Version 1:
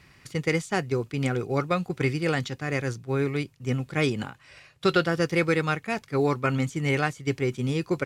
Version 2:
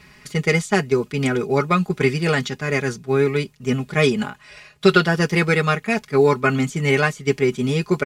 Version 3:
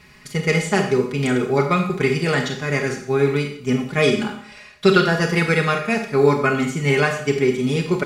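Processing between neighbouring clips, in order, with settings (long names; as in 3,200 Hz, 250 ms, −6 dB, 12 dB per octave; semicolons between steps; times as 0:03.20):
comb filter 4.8 ms, depth 75%; level +5.5 dB
four-comb reverb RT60 0.58 s, combs from 28 ms, DRR 3.5 dB; level −1 dB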